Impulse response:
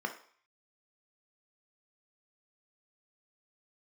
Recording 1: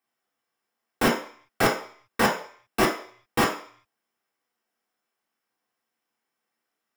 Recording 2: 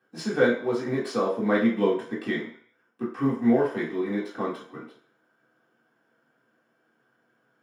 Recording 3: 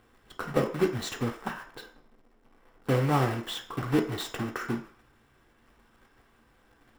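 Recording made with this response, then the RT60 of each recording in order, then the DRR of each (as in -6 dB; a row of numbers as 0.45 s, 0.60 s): 3; 0.50 s, 0.50 s, 0.50 s; -3.0 dB, -9.0 dB, 3.0 dB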